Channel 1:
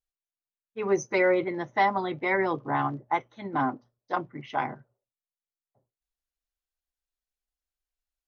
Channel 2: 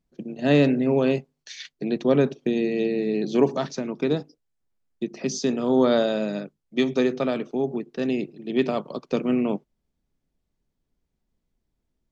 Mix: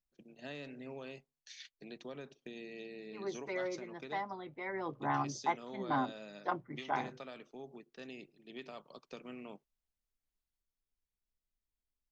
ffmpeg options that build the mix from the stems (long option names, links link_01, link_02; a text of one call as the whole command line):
ffmpeg -i stem1.wav -i stem2.wav -filter_complex "[0:a]adelay=2350,volume=-6.5dB,afade=type=in:start_time=4.72:duration=0.4:silence=0.354813[link_01];[1:a]equalizer=frequency=220:width=0.33:gain=-12.5,acompressor=threshold=-31dB:ratio=4,volume=-12dB[link_02];[link_01][link_02]amix=inputs=2:normalize=0" out.wav